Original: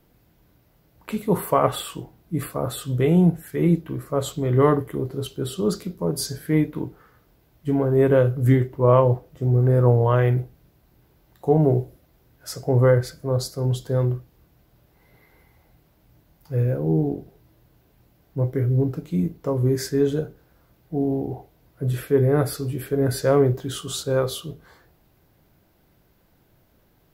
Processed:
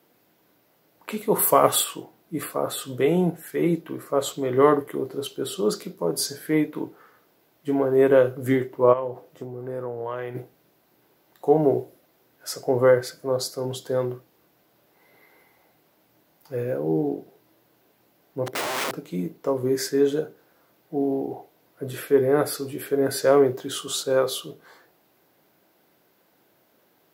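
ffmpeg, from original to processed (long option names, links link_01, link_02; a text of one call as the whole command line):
ffmpeg -i in.wav -filter_complex "[0:a]asplit=3[link_01][link_02][link_03];[link_01]afade=type=out:start_time=1.38:duration=0.02[link_04];[link_02]bass=frequency=250:gain=6,treble=frequency=4000:gain=12,afade=type=in:start_time=1.38:duration=0.02,afade=type=out:start_time=1.83:duration=0.02[link_05];[link_03]afade=type=in:start_time=1.83:duration=0.02[link_06];[link_04][link_05][link_06]amix=inputs=3:normalize=0,asplit=3[link_07][link_08][link_09];[link_07]afade=type=out:start_time=8.92:duration=0.02[link_10];[link_08]acompressor=threshold=-25dB:ratio=5:attack=3.2:release=140:knee=1:detection=peak,afade=type=in:start_time=8.92:duration=0.02,afade=type=out:start_time=10.34:duration=0.02[link_11];[link_09]afade=type=in:start_time=10.34:duration=0.02[link_12];[link_10][link_11][link_12]amix=inputs=3:normalize=0,asplit=3[link_13][link_14][link_15];[link_13]afade=type=out:start_time=18.46:duration=0.02[link_16];[link_14]aeval=exprs='(mod(15*val(0)+1,2)-1)/15':channel_layout=same,afade=type=in:start_time=18.46:duration=0.02,afade=type=out:start_time=18.94:duration=0.02[link_17];[link_15]afade=type=in:start_time=18.94:duration=0.02[link_18];[link_16][link_17][link_18]amix=inputs=3:normalize=0,highpass=300,volume=2dB" out.wav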